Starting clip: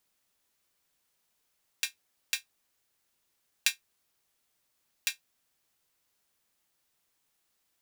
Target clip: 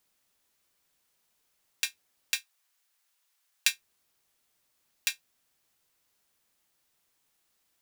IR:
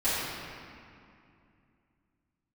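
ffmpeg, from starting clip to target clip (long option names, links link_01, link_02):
-filter_complex "[0:a]asettb=1/sr,asplit=3[link_01][link_02][link_03];[link_01]atrim=end=2.364[link_04];[link_02]atrim=start=2.36:end=3.73,asetpts=PTS-STARTPTS,afade=type=in:duration=0.004:curve=qsin,afade=type=out:start_time=1.366:duration=0.004:curve=qsin,highpass=830[link_05];[link_03]atrim=start=3.726[link_06];[link_04][link_05]acrossfade=duration=0.004:curve1=hsin:curve2=qsin[link_07];[link_07][link_06]acrossfade=duration=0.004:curve1=qsin:curve2=hsin,volume=2dB"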